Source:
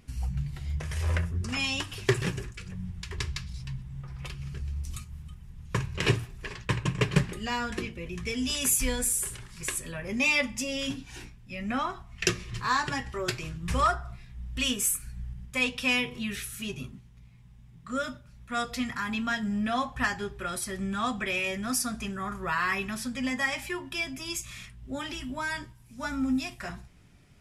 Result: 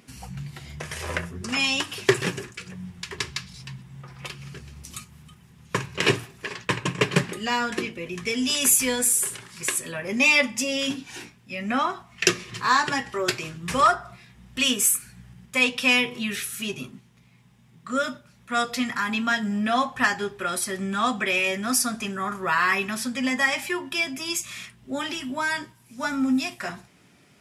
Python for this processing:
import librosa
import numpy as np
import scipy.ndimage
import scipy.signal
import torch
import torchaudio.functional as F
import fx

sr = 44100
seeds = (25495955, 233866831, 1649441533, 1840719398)

y = scipy.signal.sosfilt(scipy.signal.butter(2, 210.0, 'highpass', fs=sr, output='sos'), x)
y = y * librosa.db_to_amplitude(6.5)